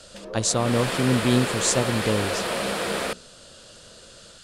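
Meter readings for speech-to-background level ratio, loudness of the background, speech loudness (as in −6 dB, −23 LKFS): 3.5 dB, −27.5 LKFS, −24.0 LKFS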